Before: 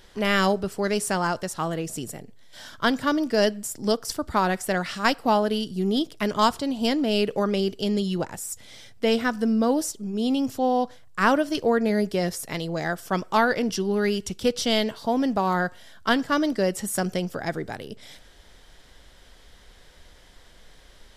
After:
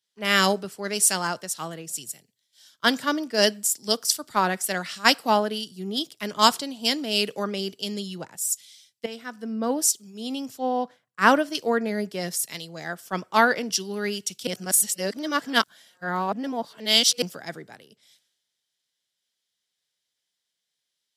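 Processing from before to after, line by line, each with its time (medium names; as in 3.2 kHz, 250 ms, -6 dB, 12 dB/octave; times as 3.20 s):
9.06–9.57 s: fade in, from -12.5 dB
14.47–17.22 s: reverse
whole clip: high-pass 130 Hz 24 dB/octave; treble shelf 2 kHz +11.5 dB; three bands expanded up and down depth 100%; trim -5.5 dB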